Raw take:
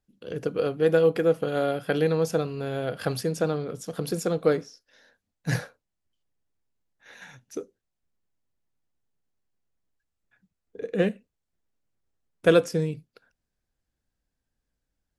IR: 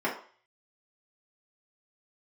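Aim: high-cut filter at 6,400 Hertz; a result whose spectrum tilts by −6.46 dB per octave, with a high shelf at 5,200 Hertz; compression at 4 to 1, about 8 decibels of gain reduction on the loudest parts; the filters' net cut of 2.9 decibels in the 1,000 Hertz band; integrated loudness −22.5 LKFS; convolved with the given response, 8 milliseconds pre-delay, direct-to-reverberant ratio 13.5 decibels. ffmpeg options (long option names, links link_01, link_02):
-filter_complex "[0:a]lowpass=6400,equalizer=frequency=1000:width_type=o:gain=-4.5,highshelf=frequency=5200:gain=-5.5,acompressor=threshold=-24dB:ratio=4,asplit=2[link_01][link_02];[1:a]atrim=start_sample=2205,adelay=8[link_03];[link_02][link_03]afir=irnorm=-1:irlink=0,volume=-24dB[link_04];[link_01][link_04]amix=inputs=2:normalize=0,volume=8.5dB"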